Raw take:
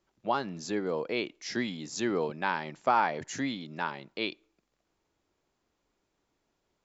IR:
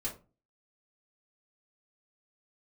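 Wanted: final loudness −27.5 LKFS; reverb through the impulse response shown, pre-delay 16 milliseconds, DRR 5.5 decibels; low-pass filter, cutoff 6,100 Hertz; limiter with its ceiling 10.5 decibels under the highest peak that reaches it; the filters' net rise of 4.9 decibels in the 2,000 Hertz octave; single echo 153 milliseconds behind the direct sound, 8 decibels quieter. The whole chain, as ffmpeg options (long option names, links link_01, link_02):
-filter_complex "[0:a]lowpass=6100,equalizer=frequency=2000:width_type=o:gain=6.5,alimiter=limit=-20.5dB:level=0:latency=1,aecho=1:1:153:0.398,asplit=2[link_01][link_02];[1:a]atrim=start_sample=2205,adelay=16[link_03];[link_02][link_03]afir=irnorm=-1:irlink=0,volume=-6.5dB[link_04];[link_01][link_04]amix=inputs=2:normalize=0,volume=4dB"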